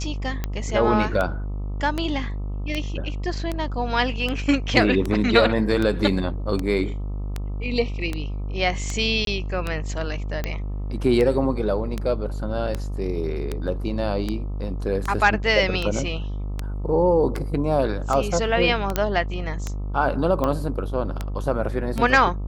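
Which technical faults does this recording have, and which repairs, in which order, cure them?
buzz 50 Hz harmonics 26 -28 dBFS
tick 78 rpm -12 dBFS
9.25–9.27 gap 22 ms
18.96 pop -6 dBFS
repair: de-click; de-hum 50 Hz, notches 26; interpolate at 9.25, 22 ms

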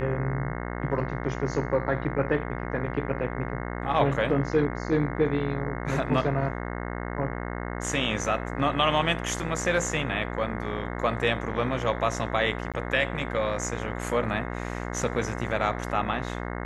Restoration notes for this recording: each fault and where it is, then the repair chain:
buzz 60 Hz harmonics 36 -33 dBFS
12.72–12.74 gap 17 ms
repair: de-hum 60 Hz, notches 36; interpolate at 12.72, 17 ms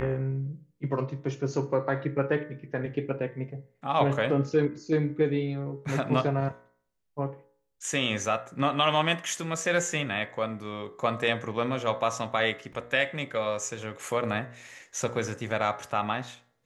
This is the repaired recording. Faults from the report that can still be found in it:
none

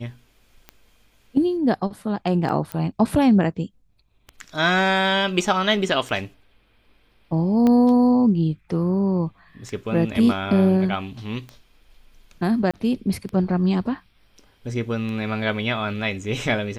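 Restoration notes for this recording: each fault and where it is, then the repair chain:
tick 33 1/3 rpm -21 dBFS
2.72 pop -14 dBFS
7.67 pop -11 dBFS
12.71–12.74 gap 26 ms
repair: de-click; interpolate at 12.71, 26 ms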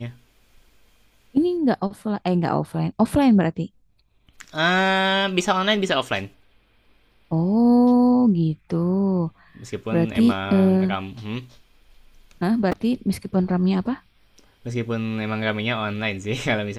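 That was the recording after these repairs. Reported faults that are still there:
7.67 pop

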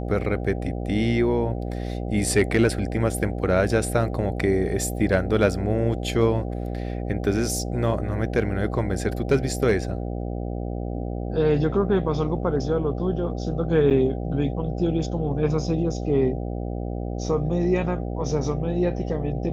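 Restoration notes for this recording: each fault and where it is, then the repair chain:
buzz 60 Hz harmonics 13 -29 dBFS
13.9–13.91 gap 8.3 ms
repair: de-hum 60 Hz, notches 13; interpolate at 13.9, 8.3 ms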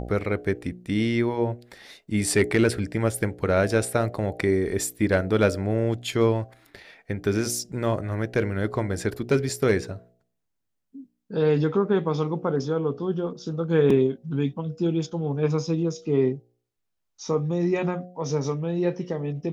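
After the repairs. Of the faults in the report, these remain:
none

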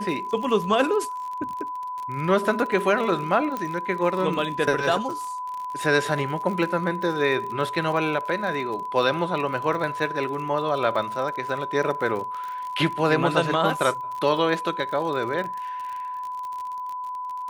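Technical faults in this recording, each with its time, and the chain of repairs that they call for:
crackle 50/s -31 dBFS
tone 1000 Hz -29 dBFS
3.57 pop -16 dBFS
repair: de-click; notch 1000 Hz, Q 30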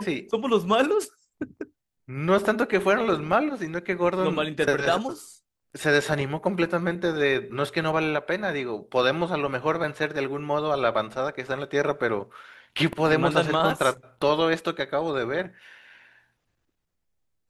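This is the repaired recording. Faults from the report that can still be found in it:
none

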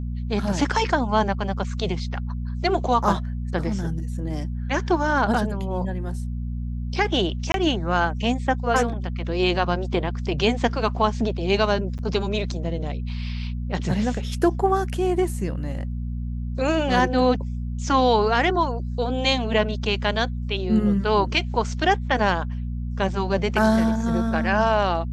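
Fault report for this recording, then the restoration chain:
hum 60 Hz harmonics 4 -28 dBFS
7.52–7.54 gap 22 ms
11.98–11.99 gap 8.3 ms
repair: de-hum 60 Hz, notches 4; interpolate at 7.52, 22 ms; interpolate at 11.98, 8.3 ms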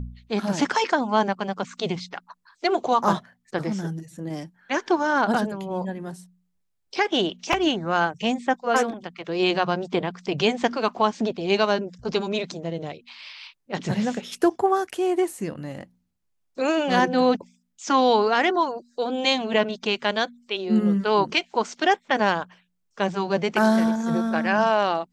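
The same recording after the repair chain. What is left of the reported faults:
none

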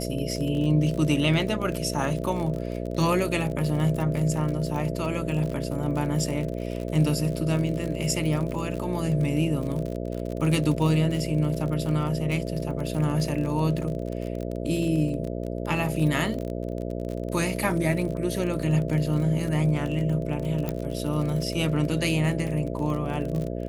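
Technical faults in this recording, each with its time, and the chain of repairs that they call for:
buzz 60 Hz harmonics 11 -31 dBFS
crackle 44/s -30 dBFS
20.69 pop -15 dBFS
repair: de-click; de-hum 60 Hz, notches 11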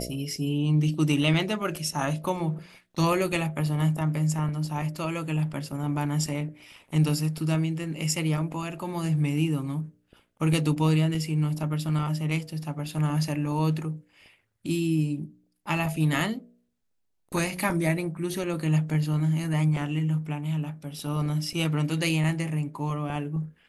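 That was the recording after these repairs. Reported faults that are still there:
none

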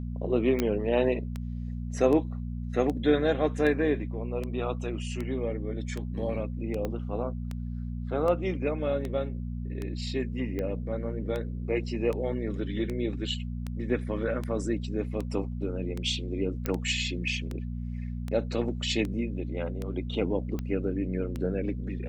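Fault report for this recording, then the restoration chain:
hum 60 Hz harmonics 4 -34 dBFS
tick 78 rpm -21 dBFS
0.6 pop -12 dBFS
6.85 pop -19 dBFS
16.66 pop -15 dBFS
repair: de-click; de-hum 60 Hz, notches 4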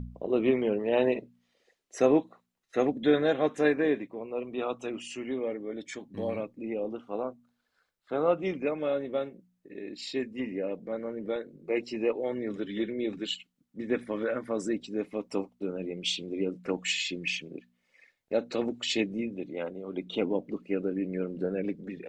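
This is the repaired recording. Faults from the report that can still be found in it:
6.85 pop

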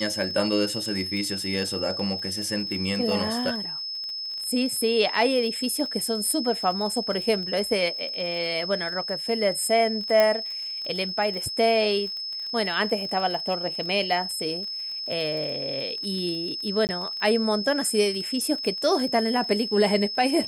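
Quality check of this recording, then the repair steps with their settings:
crackle 26/s -32 dBFS
tone 5200 Hz -30 dBFS
10.2 pop -8 dBFS
16.87–16.89 gap 19 ms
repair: de-click; notch 5200 Hz, Q 30; interpolate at 16.87, 19 ms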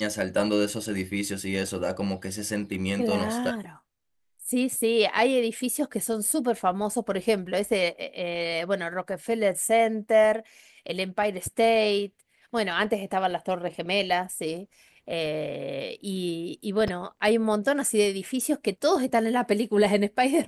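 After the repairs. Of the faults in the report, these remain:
10.2 pop

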